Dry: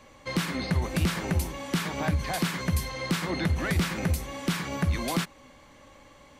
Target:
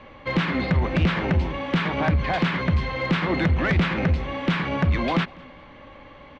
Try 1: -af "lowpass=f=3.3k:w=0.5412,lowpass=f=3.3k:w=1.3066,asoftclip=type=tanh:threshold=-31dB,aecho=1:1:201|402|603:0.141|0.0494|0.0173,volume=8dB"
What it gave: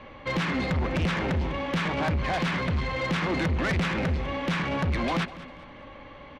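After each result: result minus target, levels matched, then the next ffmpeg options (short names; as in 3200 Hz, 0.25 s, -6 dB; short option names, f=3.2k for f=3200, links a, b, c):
soft clip: distortion +9 dB; echo-to-direct +8.5 dB
-af "lowpass=f=3.3k:w=0.5412,lowpass=f=3.3k:w=1.3066,asoftclip=type=tanh:threshold=-22dB,aecho=1:1:201|402|603:0.141|0.0494|0.0173,volume=8dB"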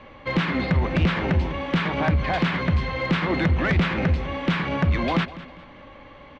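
echo-to-direct +8.5 dB
-af "lowpass=f=3.3k:w=0.5412,lowpass=f=3.3k:w=1.3066,asoftclip=type=tanh:threshold=-22dB,aecho=1:1:201|402:0.0531|0.0186,volume=8dB"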